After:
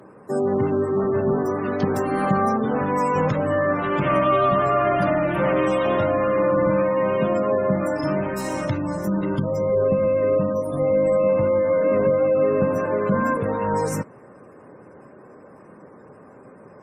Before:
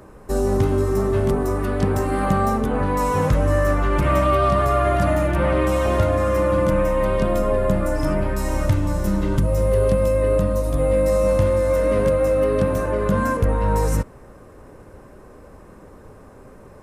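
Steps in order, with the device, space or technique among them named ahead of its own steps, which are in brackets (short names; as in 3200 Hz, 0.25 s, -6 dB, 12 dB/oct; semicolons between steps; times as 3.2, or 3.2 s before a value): dynamic EQ 3800 Hz, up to +3 dB, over -40 dBFS, Q 1; noise-suppressed video call (HPF 130 Hz 24 dB/oct; spectral gate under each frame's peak -30 dB strong; Opus 32 kbps 48000 Hz)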